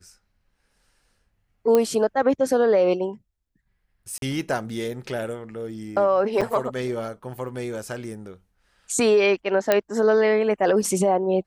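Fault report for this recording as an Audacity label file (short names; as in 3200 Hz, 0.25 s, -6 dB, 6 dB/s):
1.750000	1.750000	pop -8 dBFS
4.180000	4.220000	gap 42 ms
6.410000	6.420000	gap 6 ms
9.720000	9.720000	pop -5 dBFS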